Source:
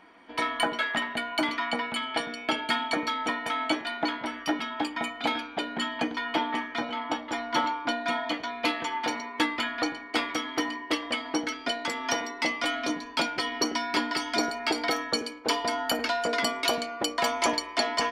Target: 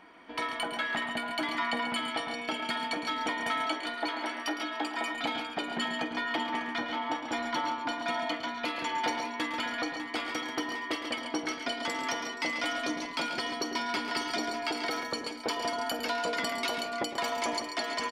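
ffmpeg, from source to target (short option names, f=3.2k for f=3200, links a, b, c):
-filter_complex "[0:a]asettb=1/sr,asplit=3[a][b][c];[a]atrim=end=3.664[d];[b]atrim=start=3.66:end=5.14,asetpts=PTS-STARTPTS,afade=t=in:d=0.004:c=qsin,afade=t=out:st=1.476:d=0.004:c=qsin,highpass=f=290:w=0.5412,highpass=f=290:w=1.3066[e];[c]atrim=start=5.136[f];[d][e]acrossfade=d=0.004:c1=hsin:c2=qsin[g];[g][f]acrossfade=d=0.004:c1=qsin:c2=hsin,alimiter=limit=-21dB:level=0:latency=1:release=349,aecho=1:1:48|109|138|474|599:0.133|0.251|0.376|0.106|0.282"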